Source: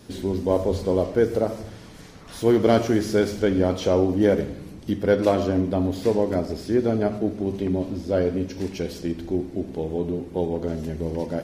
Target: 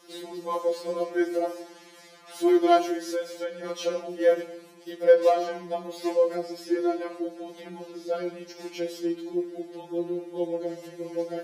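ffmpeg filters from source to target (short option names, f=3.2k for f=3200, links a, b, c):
-filter_complex "[0:a]highpass=f=300:w=0.5412,highpass=f=300:w=1.3066,asettb=1/sr,asplit=3[a][b][c];[a]atrim=end=2.904[d];[b]atrim=start=2.9:end=3.64,asetpts=PTS-STARTPTS,afade=t=in:d=0.004:c=qsin,afade=t=out:st=0.736:d=0.004:c=qsin,acompressor=threshold=-25dB:ratio=4[e];[c]atrim=start=3.636[f];[d][e]acrossfade=d=0.004:c1=hsin:c2=qsin[g];[g][f]acrossfade=d=0.004:c1=qsin:c2=hsin,afftfilt=real='re*2.83*eq(mod(b,8),0)':imag='im*2.83*eq(mod(b,8),0)':win_size=2048:overlap=0.75"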